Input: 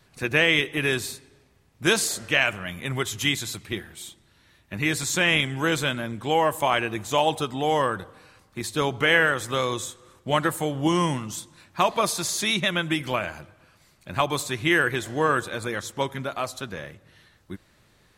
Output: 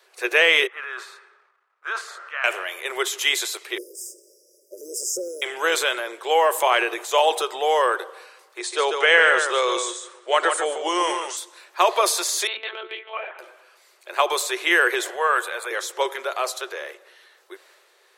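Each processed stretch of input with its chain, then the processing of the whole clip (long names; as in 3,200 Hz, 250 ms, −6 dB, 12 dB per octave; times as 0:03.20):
0:00.67–0:02.44: transient designer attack −2 dB, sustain +10 dB + resonant band-pass 1,300 Hz, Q 4.6
0:03.78–0:05.42: mu-law and A-law mismatch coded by mu + downward compressor 2 to 1, threshold −26 dBFS + linear-phase brick-wall band-stop 620–4,800 Hz
0:08.58–0:11.37: linear-phase brick-wall low-pass 10,000 Hz + single-tap delay 145 ms −8.5 dB
0:12.47–0:13.39: stiff-string resonator 100 Hz, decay 0.25 s, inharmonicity 0.03 + one-pitch LPC vocoder at 8 kHz 220 Hz
0:15.10–0:15.71: high-pass filter 610 Hz + parametric band 5,400 Hz −11.5 dB 0.88 octaves
whole clip: Chebyshev high-pass filter 370 Hz, order 6; transient designer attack 0 dB, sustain +5 dB; level +4 dB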